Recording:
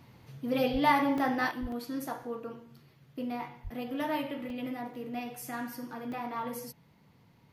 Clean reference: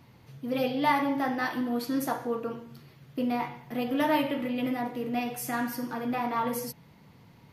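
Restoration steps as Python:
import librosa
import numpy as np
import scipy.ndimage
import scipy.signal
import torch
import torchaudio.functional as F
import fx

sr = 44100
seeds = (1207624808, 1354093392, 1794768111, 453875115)

y = fx.highpass(x, sr, hz=140.0, slope=24, at=(0.72, 0.84), fade=0.02)
y = fx.highpass(y, sr, hz=140.0, slope=24, at=(1.61, 1.73), fade=0.02)
y = fx.highpass(y, sr, hz=140.0, slope=24, at=(3.63, 3.75), fade=0.02)
y = fx.fix_interpolate(y, sr, at_s=(1.18, 1.72, 2.23, 4.5, 4.94, 5.42, 6.12), length_ms=2.3)
y = fx.gain(y, sr, db=fx.steps((0.0, 0.0), (1.51, 7.0)))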